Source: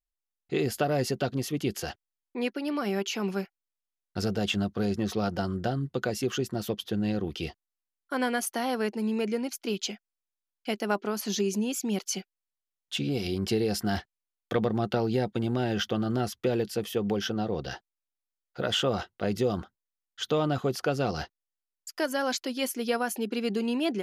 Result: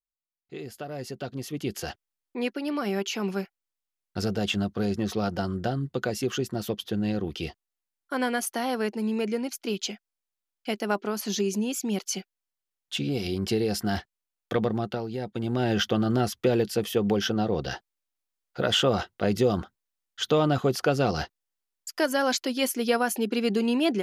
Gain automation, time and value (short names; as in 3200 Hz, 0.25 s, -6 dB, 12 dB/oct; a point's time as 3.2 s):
0.79 s -11 dB
1.9 s +1 dB
14.71 s +1 dB
15.11 s -7 dB
15.7 s +4 dB